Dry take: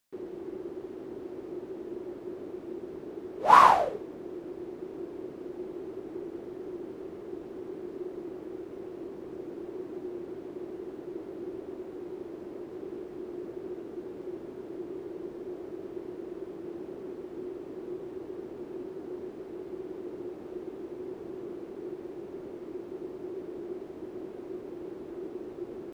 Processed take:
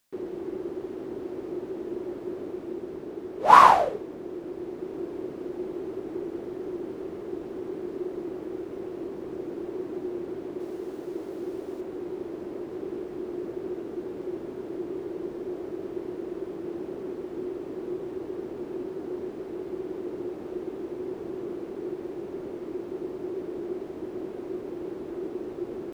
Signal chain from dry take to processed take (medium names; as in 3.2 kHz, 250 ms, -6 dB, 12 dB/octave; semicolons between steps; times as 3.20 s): 10.60–11.81 s: tone controls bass -3 dB, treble +6 dB; in parallel at +1.5 dB: gain riding within 4 dB 2 s; on the sum: trim -4 dB